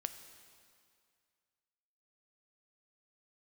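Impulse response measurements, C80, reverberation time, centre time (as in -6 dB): 11.0 dB, 2.2 s, 20 ms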